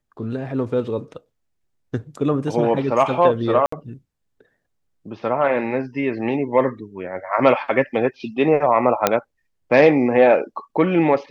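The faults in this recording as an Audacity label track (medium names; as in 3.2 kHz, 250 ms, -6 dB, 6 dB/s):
3.660000	3.720000	dropout 64 ms
9.070000	9.070000	pop 0 dBFS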